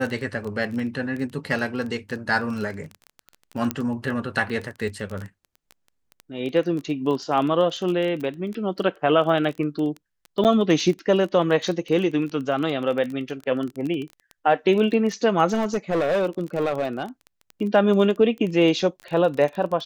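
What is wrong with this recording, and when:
crackle 18/s -28 dBFS
3.71 pop -9 dBFS
10.44–10.45 gap 8.1 ms
15.53–17.03 clipped -18 dBFS

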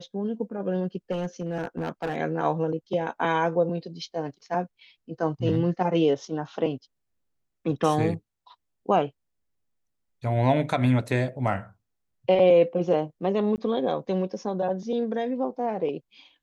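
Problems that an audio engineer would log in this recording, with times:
1.11–2.17 clipped -24 dBFS
13.56–13.58 gap 19 ms

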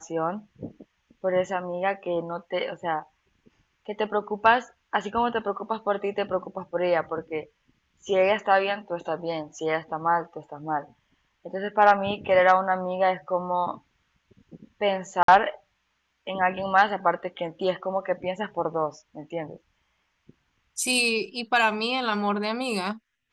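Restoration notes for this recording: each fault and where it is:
15.23–15.28 gap 53 ms

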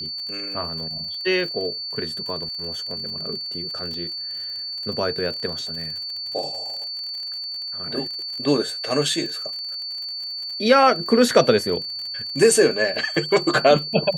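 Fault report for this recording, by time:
crackle 44/s -31 dBFS
tone 4500 Hz -28 dBFS
3.94 gap 2.4 ms

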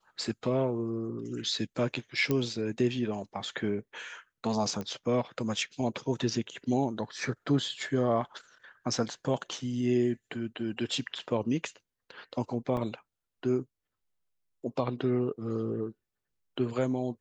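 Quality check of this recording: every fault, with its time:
2.31 pop -15 dBFS
4.81 pop -23 dBFS
12.77 gap 2 ms

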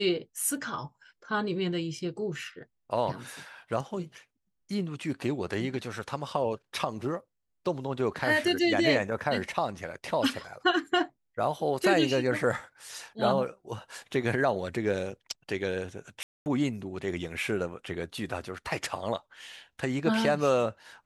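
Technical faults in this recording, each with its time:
16.23–16.46 gap 0.229 s

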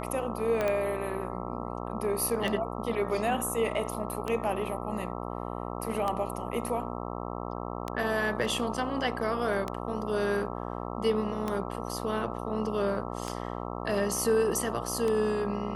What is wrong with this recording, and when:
buzz 60 Hz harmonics 22 -36 dBFS
tick 33 1/3 rpm -17 dBFS
0.61 pop -16 dBFS

